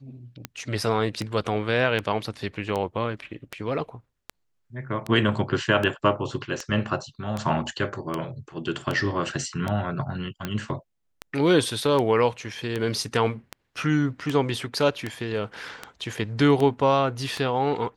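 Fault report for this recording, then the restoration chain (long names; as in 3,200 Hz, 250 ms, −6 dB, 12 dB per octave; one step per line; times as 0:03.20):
scratch tick 78 rpm −14 dBFS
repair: click removal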